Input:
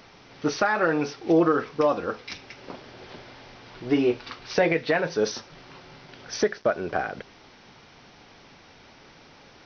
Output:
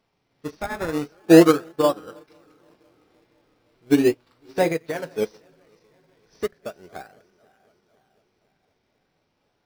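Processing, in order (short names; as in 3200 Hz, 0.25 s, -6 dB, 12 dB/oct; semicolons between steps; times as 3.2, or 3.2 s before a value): regenerating reverse delay 0.252 s, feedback 76%, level -14 dB; harmonic-percussive split harmonic +7 dB; in parallel at -3 dB: decimation with a swept rate 20×, swing 100% 0.37 Hz; on the sum: upward expander 2.5:1, over -24 dBFS; gain -1 dB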